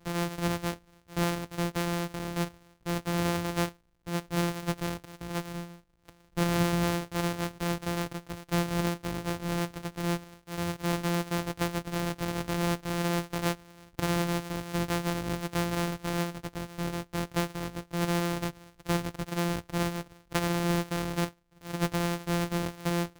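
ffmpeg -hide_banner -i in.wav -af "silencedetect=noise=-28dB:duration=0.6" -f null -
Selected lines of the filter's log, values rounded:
silence_start: 5.40
silence_end: 6.37 | silence_duration: 0.97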